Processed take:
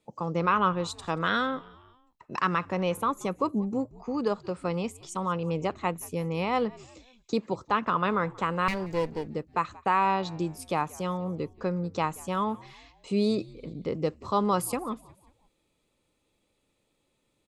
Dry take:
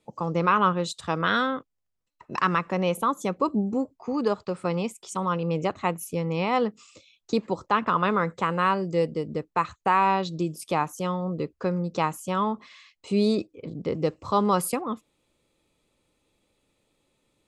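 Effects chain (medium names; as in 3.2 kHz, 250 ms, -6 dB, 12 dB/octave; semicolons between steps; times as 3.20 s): 8.68–9.27 s: comb filter that takes the minimum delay 0.42 ms; frequency-shifting echo 180 ms, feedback 51%, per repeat -84 Hz, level -22.5 dB; trim -3 dB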